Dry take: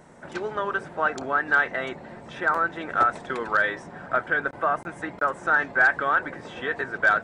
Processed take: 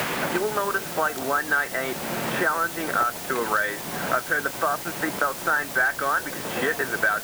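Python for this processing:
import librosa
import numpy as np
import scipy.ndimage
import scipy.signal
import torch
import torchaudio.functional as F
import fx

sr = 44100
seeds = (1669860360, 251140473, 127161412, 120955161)

y = fx.quant_dither(x, sr, seeds[0], bits=6, dither='triangular')
y = fx.band_squash(y, sr, depth_pct=100)
y = F.gain(torch.from_numpy(y), -1.0).numpy()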